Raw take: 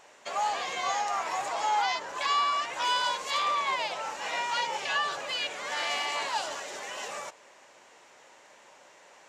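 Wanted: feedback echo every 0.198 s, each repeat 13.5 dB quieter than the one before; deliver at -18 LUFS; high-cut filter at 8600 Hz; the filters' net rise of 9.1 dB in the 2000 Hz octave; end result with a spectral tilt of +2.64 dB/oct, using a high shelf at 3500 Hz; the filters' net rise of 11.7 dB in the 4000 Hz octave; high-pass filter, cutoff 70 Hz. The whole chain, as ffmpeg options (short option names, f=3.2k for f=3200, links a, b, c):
-af "highpass=70,lowpass=8.6k,equalizer=f=2k:t=o:g=6.5,highshelf=f=3.5k:g=8,equalizer=f=4k:t=o:g=8,aecho=1:1:198|396:0.211|0.0444,volume=3.5dB"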